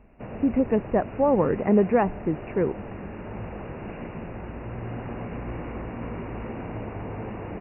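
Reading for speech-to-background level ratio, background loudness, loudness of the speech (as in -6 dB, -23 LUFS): 12.5 dB, -36.5 LUFS, -24.0 LUFS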